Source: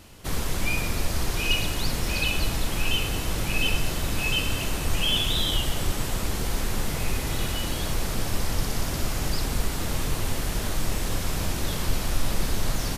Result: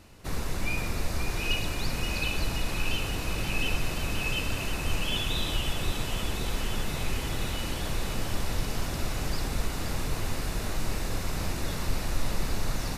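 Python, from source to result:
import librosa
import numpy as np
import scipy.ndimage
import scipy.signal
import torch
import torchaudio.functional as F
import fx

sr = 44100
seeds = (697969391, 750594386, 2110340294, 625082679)

p1 = fx.high_shelf(x, sr, hz=5600.0, db=-6.0)
p2 = fx.notch(p1, sr, hz=3200.0, q=10.0)
p3 = p2 + fx.echo_thinned(p2, sr, ms=528, feedback_pct=80, hz=550.0, wet_db=-8.0, dry=0)
y = p3 * 10.0 ** (-3.5 / 20.0)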